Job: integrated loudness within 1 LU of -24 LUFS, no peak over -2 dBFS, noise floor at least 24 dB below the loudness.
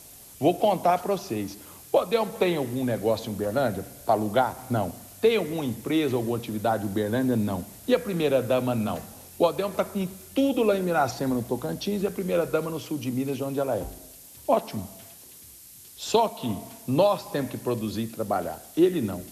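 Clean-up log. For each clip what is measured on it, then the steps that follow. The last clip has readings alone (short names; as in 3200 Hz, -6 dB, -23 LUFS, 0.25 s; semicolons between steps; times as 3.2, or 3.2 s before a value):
noise floor -48 dBFS; noise floor target -51 dBFS; loudness -26.5 LUFS; peak -10.0 dBFS; loudness target -24.0 LUFS
-> denoiser 6 dB, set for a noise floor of -48 dBFS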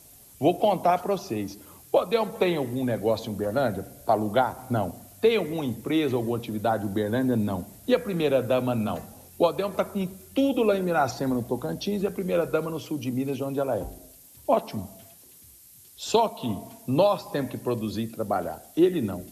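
noise floor -51 dBFS; loudness -26.5 LUFS; peak -10.0 dBFS; loudness target -24.0 LUFS
-> gain +2.5 dB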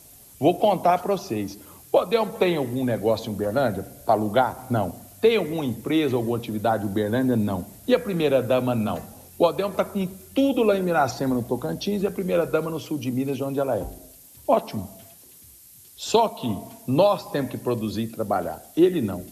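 loudness -24.0 LUFS; peak -7.5 dBFS; noise floor -49 dBFS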